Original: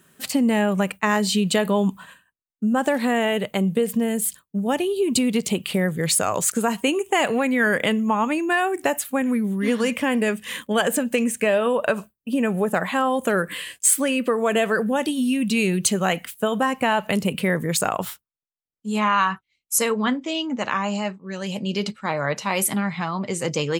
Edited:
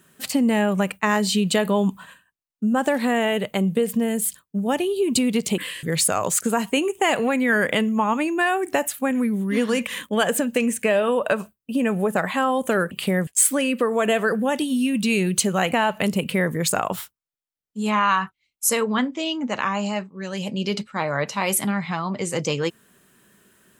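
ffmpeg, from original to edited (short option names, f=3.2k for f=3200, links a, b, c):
-filter_complex "[0:a]asplit=7[a][b][c][d][e][f][g];[a]atrim=end=5.582[h];[b]atrim=start=13.488:end=13.742[i];[c]atrim=start=5.938:end=9.982[j];[d]atrim=start=10.448:end=13.492[k];[e]atrim=start=5.578:end=5.942[l];[f]atrim=start=13.738:end=16.192[m];[g]atrim=start=16.808[n];[h][i]acrossfade=d=0.004:c1=hsin:c2=hsin[o];[o][j]acrossfade=d=0.004:c1=hsin:c2=hsin[p];[p][k]acrossfade=d=0.004:c1=hsin:c2=hsin[q];[q][l]acrossfade=d=0.004:c1=hsin:c2=hsin[r];[r][m]acrossfade=d=0.004:c1=hsin:c2=hsin[s];[s][n]acrossfade=d=0.004:c1=hsin:c2=hsin"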